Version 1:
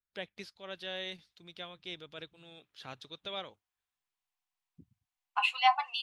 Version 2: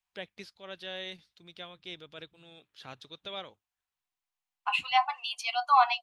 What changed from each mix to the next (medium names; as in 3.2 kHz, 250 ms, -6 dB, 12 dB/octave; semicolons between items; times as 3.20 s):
second voice: entry -0.70 s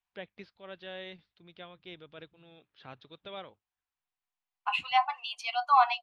first voice: add distance through air 300 m; second voice: add low-pass 3.4 kHz 6 dB/octave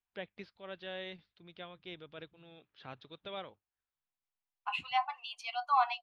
second voice -6.0 dB